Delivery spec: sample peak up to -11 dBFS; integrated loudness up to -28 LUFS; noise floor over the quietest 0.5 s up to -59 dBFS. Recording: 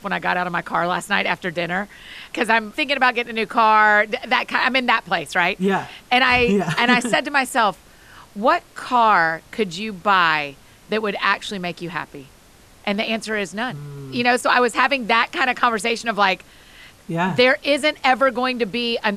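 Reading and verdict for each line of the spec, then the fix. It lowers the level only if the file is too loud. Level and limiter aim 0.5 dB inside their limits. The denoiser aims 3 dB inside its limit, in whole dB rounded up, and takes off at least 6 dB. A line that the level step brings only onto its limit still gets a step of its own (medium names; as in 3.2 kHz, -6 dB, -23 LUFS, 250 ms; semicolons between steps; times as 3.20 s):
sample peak -3.0 dBFS: fail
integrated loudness -19.0 LUFS: fail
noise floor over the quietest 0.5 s -49 dBFS: fail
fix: noise reduction 6 dB, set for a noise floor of -49 dBFS; trim -9.5 dB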